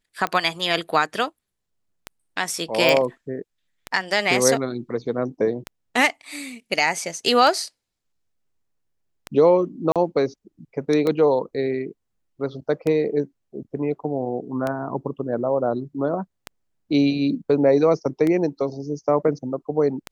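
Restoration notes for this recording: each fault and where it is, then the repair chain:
tick 33 1/3 rpm -12 dBFS
2.89 s: pop
9.92–9.96 s: dropout 37 ms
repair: de-click; interpolate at 9.92 s, 37 ms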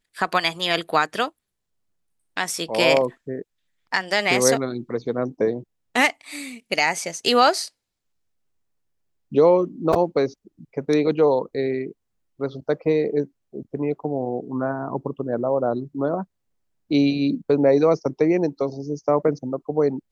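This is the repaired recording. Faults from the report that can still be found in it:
nothing left

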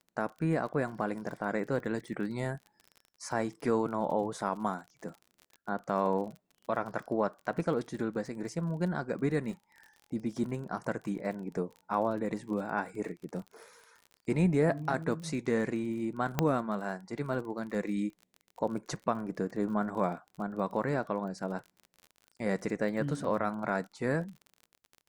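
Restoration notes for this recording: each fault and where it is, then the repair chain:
crackle 37 per s -41 dBFS
16.39 s: pop -12 dBFS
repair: de-click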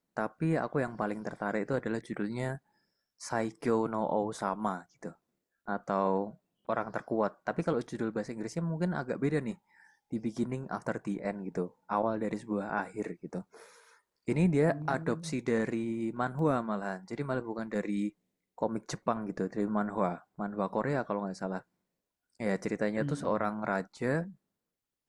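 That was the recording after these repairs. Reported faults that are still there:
16.39 s: pop

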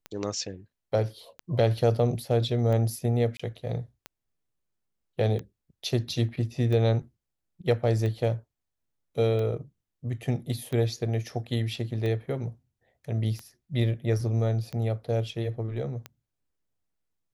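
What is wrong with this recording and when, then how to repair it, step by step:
tick 45 rpm -22 dBFS
3.37–3.40 s: dropout 25 ms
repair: de-click; interpolate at 3.37 s, 25 ms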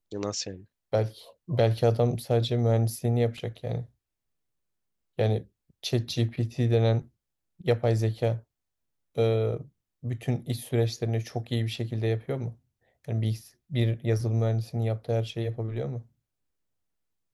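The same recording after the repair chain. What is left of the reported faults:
nothing left

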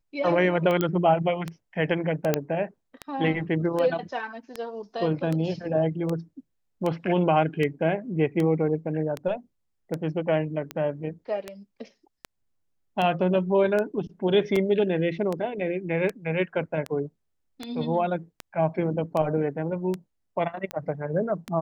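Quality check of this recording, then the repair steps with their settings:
tick 78 rpm -16 dBFS
0.81 s: pop -11 dBFS
2.34 s: pop -7 dBFS
14.56 s: dropout 2.7 ms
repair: de-click; interpolate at 14.56 s, 2.7 ms

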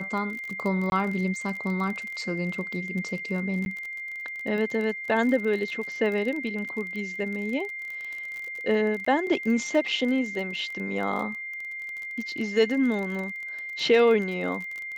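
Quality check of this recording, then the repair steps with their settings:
crackle 30 per s -32 dBFS
whine 2.1 kHz -33 dBFS
0.90–0.92 s: dropout 21 ms
3.65–3.66 s: dropout 11 ms
9.05–9.06 s: dropout 14 ms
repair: de-click; band-stop 2.1 kHz, Q 30; interpolate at 0.90 s, 21 ms; interpolate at 3.65 s, 11 ms; interpolate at 9.05 s, 14 ms

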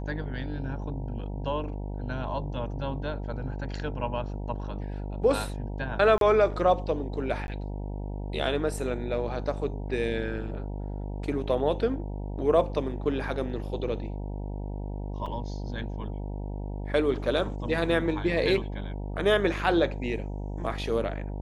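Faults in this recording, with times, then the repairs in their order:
buzz 50 Hz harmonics 19 -34 dBFS
6.18–6.21 s: dropout 32 ms
7.47–7.48 s: dropout 11 ms
15.26 s: dropout 4.2 ms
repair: de-hum 50 Hz, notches 19; interpolate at 6.18 s, 32 ms; interpolate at 7.47 s, 11 ms; interpolate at 15.26 s, 4.2 ms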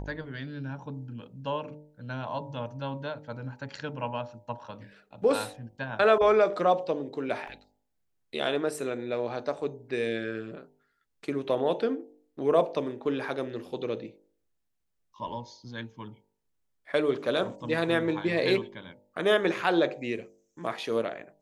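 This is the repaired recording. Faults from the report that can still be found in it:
nothing left

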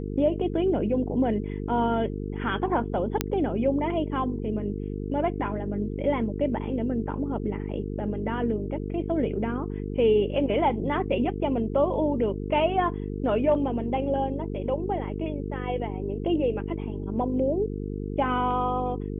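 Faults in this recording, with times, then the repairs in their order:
buzz 50 Hz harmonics 9 -32 dBFS
3.21 s: pop -7 dBFS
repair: de-click; de-hum 50 Hz, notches 9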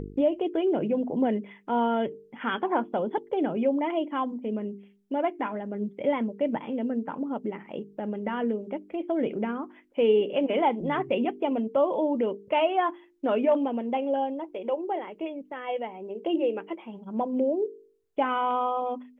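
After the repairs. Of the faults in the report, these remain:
nothing left

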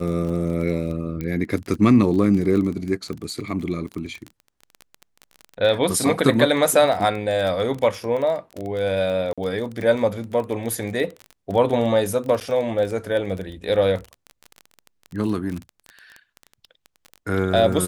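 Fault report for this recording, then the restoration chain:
crackle 22 per s -27 dBFS
1.21 s: pop -16 dBFS
9.33–9.38 s: dropout 46 ms
12.40–12.41 s: dropout 9.1 ms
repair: de-click; interpolate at 9.33 s, 46 ms; interpolate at 12.40 s, 9.1 ms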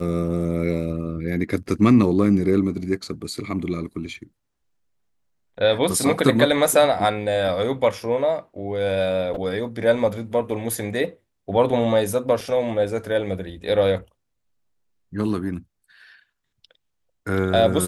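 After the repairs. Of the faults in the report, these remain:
nothing left

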